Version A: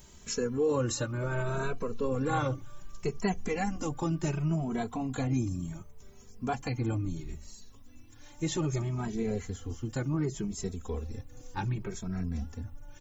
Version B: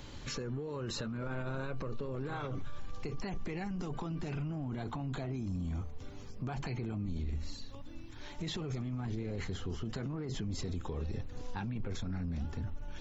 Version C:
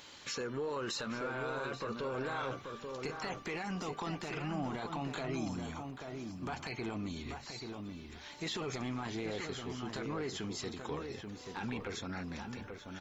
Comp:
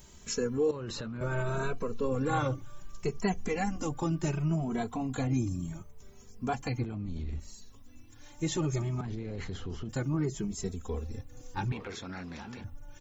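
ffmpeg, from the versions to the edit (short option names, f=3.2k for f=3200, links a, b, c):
-filter_complex "[1:a]asplit=3[a][b][c];[0:a]asplit=5[d][e][f][g][h];[d]atrim=end=0.712[i];[a]atrim=start=0.708:end=1.212[j];[e]atrim=start=1.208:end=6.842[k];[b]atrim=start=6.838:end=7.402[l];[f]atrim=start=7.398:end=9.012[m];[c]atrim=start=9.008:end=9.892[n];[g]atrim=start=9.888:end=11.722[o];[2:a]atrim=start=11.718:end=12.642[p];[h]atrim=start=12.638[q];[i][j]acrossfade=d=0.004:c1=hsin:c2=hsin[r];[r][k]acrossfade=d=0.004:c1=hsin:c2=hsin[s];[s][l]acrossfade=d=0.004:c1=hsin:c2=hsin[t];[t][m]acrossfade=d=0.004:c1=hsin:c2=hsin[u];[u][n]acrossfade=d=0.004:c1=hsin:c2=hsin[v];[v][o]acrossfade=d=0.004:c1=hsin:c2=hsin[w];[w][p]acrossfade=d=0.004:c1=hsin:c2=hsin[x];[x][q]acrossfade=d=0.004:c1=hsin:c2=hsin"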